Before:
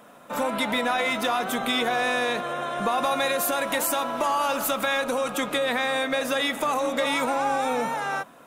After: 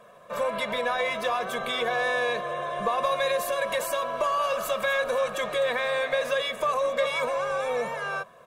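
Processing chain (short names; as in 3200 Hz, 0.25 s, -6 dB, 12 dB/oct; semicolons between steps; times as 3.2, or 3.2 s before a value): high shelf 7100 Hz -10.5 dB; comb 1.8 ms, depth 96%; 4.19–6.31 frequency-shifting echo 0.25 s, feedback 55%, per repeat +94 Hz, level -15 dB; gain -4.5 dB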